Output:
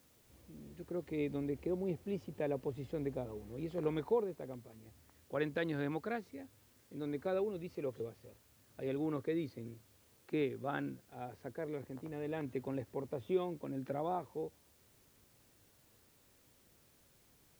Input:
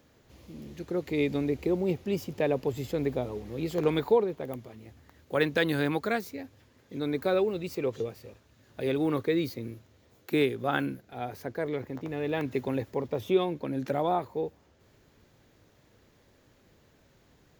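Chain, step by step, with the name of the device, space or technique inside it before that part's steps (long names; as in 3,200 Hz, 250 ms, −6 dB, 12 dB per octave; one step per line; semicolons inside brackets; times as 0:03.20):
cassette deck with a dirty head (head-to-tape spacing loss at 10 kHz 22 dB; tape wow and flutter 24 cents; white noise bed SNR 29 dB)
level −8.5 dB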